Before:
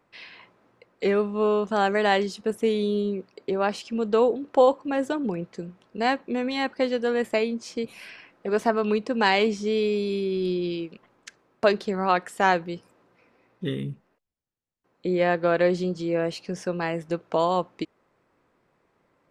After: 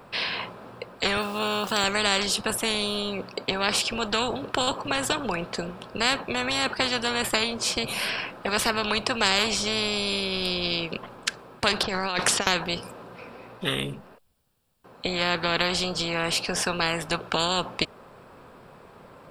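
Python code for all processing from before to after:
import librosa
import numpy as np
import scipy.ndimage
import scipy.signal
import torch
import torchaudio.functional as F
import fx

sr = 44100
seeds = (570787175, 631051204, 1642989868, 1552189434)

y = fx.chain(x, sr, fx.highpass(hz=120.0, slope=12),
    fx.sample_gate(floor_db=-50.0), at=(1.17, 1.84))
y = fx.chain(y, sr, fx.env_lowpass(base_hz=1300.0, full_db=-20.0),
    fx.peak_eq(hz=5800.0, db=12.0, octaves=0.6),
    fx.over_compress(threshold_db=-32.0, ratio=-1.0), at=(11.83, 12.47))
y = fx.graphic_eq_31(y, sr, hz=(315, 2000, 6300), db=(-8, -9, -9))
y = fx.spectral_comp(y, sr, ratio=4.0)
y = y * 10.0 ** (6.0 / 20.0)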